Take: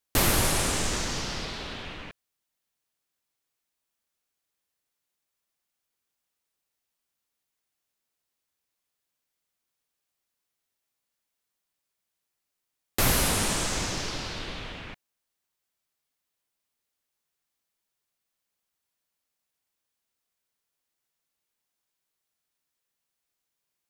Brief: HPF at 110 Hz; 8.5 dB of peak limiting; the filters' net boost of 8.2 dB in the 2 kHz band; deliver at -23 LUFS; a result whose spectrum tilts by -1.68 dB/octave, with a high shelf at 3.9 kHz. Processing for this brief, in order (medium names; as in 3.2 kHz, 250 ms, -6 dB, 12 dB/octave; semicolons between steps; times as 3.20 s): high-pass 110 Hz; peaking EQ 2 kHz +8.5 dB; treble shelf 3.9 kHz +6.5 dB; trim +2 dB; peak limiter -12.5 dBFS